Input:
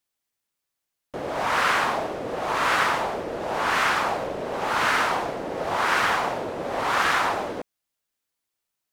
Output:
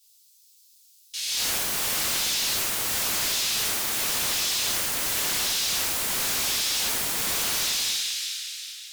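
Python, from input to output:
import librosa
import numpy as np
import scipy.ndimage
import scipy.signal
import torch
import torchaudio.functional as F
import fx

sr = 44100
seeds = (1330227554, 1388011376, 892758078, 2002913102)

y = scipy.signal.sosfilt(scipy.signal.cheby2(4, 70, 860.0, 'highpass', fs=sr, output='sos'), x)
y = fx.echo_feedback(y, sr, ms=368, feedback_pct=36, wet_db=-6)
y = fx.rev_double_slope(y, sr, seeds[0], early_s=0.35, late_s=3.6, knee_db=-17, drr_db=-4.5)
y = fx.fold_sine(y, sr, drive_db=16, ceiling_db=-22.5)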